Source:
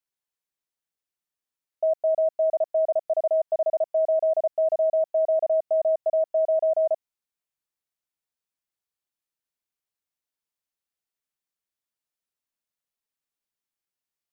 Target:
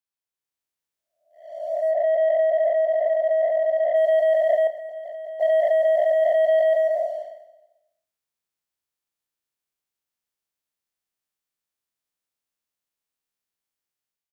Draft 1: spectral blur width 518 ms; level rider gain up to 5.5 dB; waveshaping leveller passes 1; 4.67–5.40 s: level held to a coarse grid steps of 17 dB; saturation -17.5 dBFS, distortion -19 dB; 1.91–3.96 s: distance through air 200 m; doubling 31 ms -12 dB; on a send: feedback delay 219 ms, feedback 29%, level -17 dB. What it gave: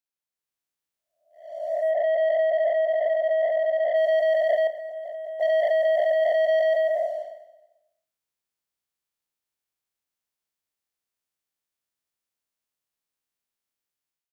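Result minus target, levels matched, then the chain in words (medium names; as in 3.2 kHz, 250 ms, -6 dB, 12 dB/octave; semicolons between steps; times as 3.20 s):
saturation: distortion +18 dB
spectral blur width 518 ms; level rider gain up to 5.5 dB; waveshaping leveller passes 1; 4.67–5.40 s: level held to a coarse grid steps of 17 dB; saturation -7 dBFS, distortion -37 dB; 1.91–3.96 s: distance through air 200 m; doubling 31 ms -12 dB; on a send: feedback delay 219 ms, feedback 29%, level -17 dB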